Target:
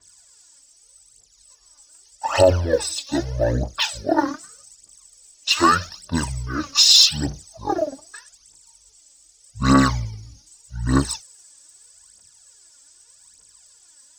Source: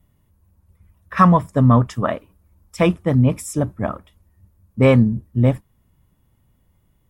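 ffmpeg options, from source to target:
ffmpeg -i in.wav -af "bandreject=frequency=1000:width=16,asetrate=22050,aresample=44100,aderivative,aphaser=in_gain=1:out_gain=1:delay=3.8:decay=0.69:speed=0.82:type=triangular,alimiter=level_in=25dB:limit=-1dB:release=50:level=0:latency=1,adynamicequalizer=threshold=0.0141:dfrequency=6700:dqfactor=0.7:tfrequency=6700:tqfactor=0.7:attack=5:release=100:ratio=0.375:range=3.5:mode=boostabove:tftype=highshelf,volume=-3dB" out.wav

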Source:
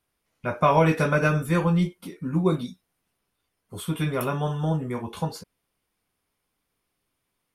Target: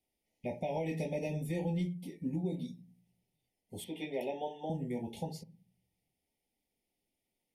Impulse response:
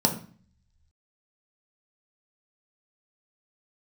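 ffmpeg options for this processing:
-filter_complex "[0:a]asuperstop=centerf=1300:order=20:qfactor=1.4,asettb=1/sr,asplit=3[link_01][link_02][link_03];[link_01]atrim=end=3.844[link_04];[link_02]atrim=start=3.84:end=4.7,asetpts=PTS-STARTPTS,afade=type=in:duration=0.004:curve=qsin,afade=type=out:start_time=0.856:duration=0.004:curve=qsin,acrossover=split=290 4600:gain=0.0794 1 0.141[link_05][link_06][link_07];[link_05][link_06][link_07]amix=inputs=3:normalize=0[link_08];[link_03]atrim=start=4.696[link_09];[link_04][link_08]acrossfade=duration=0.004:curve1=hsin:curve2=qsin[link_10];[link_10][link_09]acrossfade=duration=0.004:curve1=qsin:curve2=hsin,asplit=2[link_11][link_12];[1:a]atrim=start_sample=2205,lowpass=3900[link_13];[link_12][link_13]afir=irnorm=-1:irlink=0,volume=-25dB[link_14];[link_11][link_14]amix=inputs=2:normalize=0,alimiter=limit=-18.5dB:level=0:latency=1:release=402,volume=-8dB"

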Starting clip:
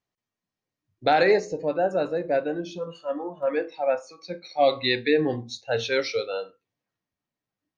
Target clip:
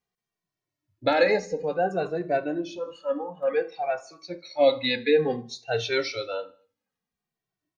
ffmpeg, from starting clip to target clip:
ffmpeg -i in.wav -filter_complex "[0:a]aecho=1:1:78|156|234:0.0668|0.0334|0.0167,asplit=2[link_01][link_02];[link_02]adelay=2.1,afreqshift=-0.56[link_03];[link_01][link_03]amix=inputs=2:normalize=1,volume=2.5dB" out.wav

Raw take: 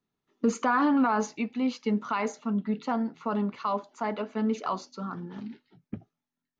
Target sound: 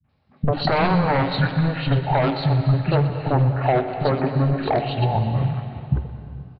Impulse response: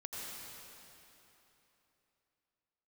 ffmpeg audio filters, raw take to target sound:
-filter_complex "[0:a]highpass=frequency=74:poles=1,bandreject=frequency=378.5:width_type=h:width=4,bandreject=frequency=757:width_type=h:width=4,bandreject=frequency=1135.5:width_type=h:width=4,bandreject=frequency=1514:width_type=h:width=4,bandreject=frequency=1892.5:width_type=h:width=4,bandreject=frequency=2271:width_type=h:width=4,bandreject=frequency=2649.5:width_type=h:width=4,bandreject=frequency=3028:width_type=h:width=4,bandreject=frequency=3406.5:width_type=h:width=4,bandreject=frequency=3785:width_type=h:width=4,bandreject=frequency=4163.5:width_type=h:width=4,bandreject=frequency=4542:width_type=h:width=4,bandreject=frequency=4920.5:width_type=h:width=4,bandreject=frequency=5299:width_type=h:width=4,bandreject=frequency=5677.5:width_type=h:width=4,bandreject=frequency=6056:width_type=h:width=4,bandreject=frequency=6434.5:width_type=h:width=4,bandreject=frequency=6813:width_type=h:width=4,bandreject=frequency=7191.5:width_type=h:width=4,bandreject=frequency=7570:width_type=h:width=4,bandreject=frequency=7948.5:width_type=h:width=4,bandreject=frequency=8327:width_type=h:width=4,bandreject=frequency=8705.5:width_type=h:width=4,bandreject=frequency=9084:width_type=h:width=4,bandreject=frequency=9462.5:width_type=h:width=4,bandreject=frequency=9841:width_type=h:width=4,bandreject=frequency=10219.5:width_type=h:width=4,bandreject=frequency=10598:width_type=h:width=4,bandreject=frequency=10976.5:width_type=h:width=4,bandreject=frequency=11355:width_type=h:width=4,bandreject=frequency=11733.5:width_type=h:width=4,bandreject=frequency=12112:width_type=h:width=4,bandreject=frequency=12490.5:width_type=h:width=4,bandreject=frequency=12869:width_type=h:width=4,aeval=exprs='0.188*sin(PI/2*2.82*val(0)/0.188)':channel_layout=same,equalizer=frequency=110:width_type=o:width=0.4:gain=10.5,acompressor=threshold=-22dB:ratio=6,adynamicequalizer=threshold=0.00891:dfrequency=760:dqfactor=3.1:tfrequency=760:tqfactor=3.1:attack=5:release=100:ratio=0.375:range=2:mode=cutabove:tftype=bell,asetrate=27781,aresample=44100,atempo=1.5874,acrossover=split=250|2400[link_01][link_02][link_03];[link_02]adelay=40[link_04];[link_03]adelay=90[link_05];[link_01][link_04][link_05]amix=inputs=3:normalize=0,asplit=2[link_06][link_07];[1:a]atrim=start_sample=2205,asetrate=57330,aresample=44100,adelay=123[link_08];[link_07][link_08]afir=irnorm=-1:irlink=0,volume=-5.5dB[link_09];[link_06][link_09]amix=inputs=2:normalize=0,aresample=11025,aresample=44100,volume=6dB"

